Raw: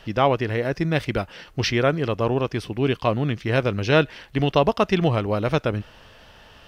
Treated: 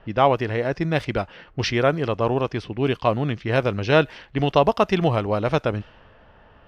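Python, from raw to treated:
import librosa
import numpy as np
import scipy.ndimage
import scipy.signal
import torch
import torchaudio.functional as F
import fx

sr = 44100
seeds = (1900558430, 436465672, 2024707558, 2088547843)

y = fx.env_lowpass(x, sr, base_hz=1400.0, full_db=-16.5)
y = fx.dynamic_eq(y, sr, hz=810.0, q=1.1, threshold_db=-32.0, ratio=4.0, max_db=4)
y = F.gain(torch.from_numpy(y), -1.0).numpy()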